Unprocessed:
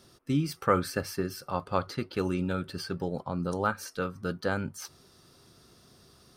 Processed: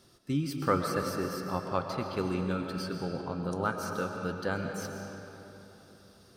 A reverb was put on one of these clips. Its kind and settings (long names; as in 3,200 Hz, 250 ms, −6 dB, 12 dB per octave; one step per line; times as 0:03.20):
comb and all-pass reverb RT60 3.4 s, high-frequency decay 0.65×, pre-delay 85 ms, DRR 3 dB
level −3 dB